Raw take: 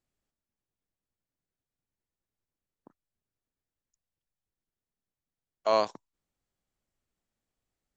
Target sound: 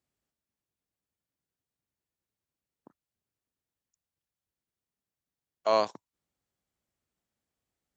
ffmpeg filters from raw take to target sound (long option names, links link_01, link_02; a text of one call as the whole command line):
ffmpeg -i in.wav -af "highpass=58" out.wav